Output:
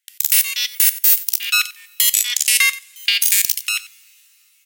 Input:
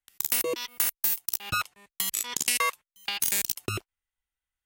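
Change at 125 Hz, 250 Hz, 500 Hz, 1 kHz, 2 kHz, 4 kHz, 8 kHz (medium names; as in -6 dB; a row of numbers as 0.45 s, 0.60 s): under -15 dB, under -10 dB, under -10 dB, -2.5 dB, +13.0 dB, +14.0 dB, +12.0 dB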